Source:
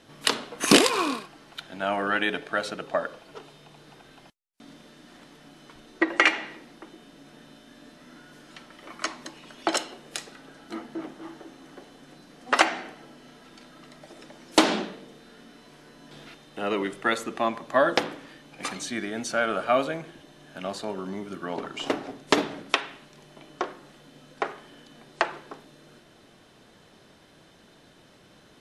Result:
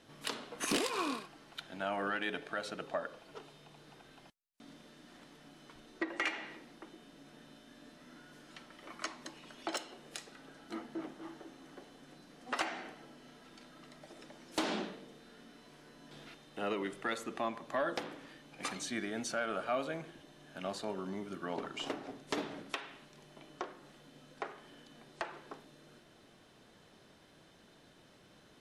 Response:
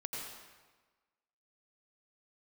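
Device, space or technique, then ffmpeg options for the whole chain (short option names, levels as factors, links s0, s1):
soft clipper into limiter: -af "asoftclip=type=tanh:threshold=0.299,alimiter=limit=0.119:level=0:latency=1:release=260,volume=0.473"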